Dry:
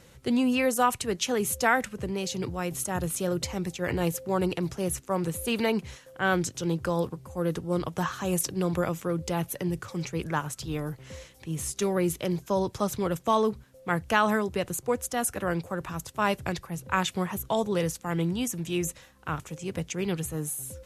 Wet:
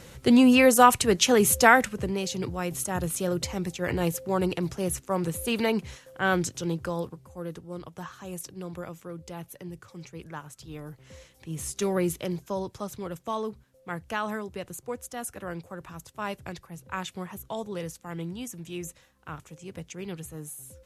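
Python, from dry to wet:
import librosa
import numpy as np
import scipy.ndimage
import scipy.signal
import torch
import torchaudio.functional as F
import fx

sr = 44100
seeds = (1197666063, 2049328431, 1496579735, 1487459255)

y = fx.gain(x, sr, db=fx.line((1.6, 7.0), (2.3, 0.5), (6.48, 0.5), (7.73, -10.5), (10.5, -10.5), (11.95, 0.5), (12.85, -7.5)))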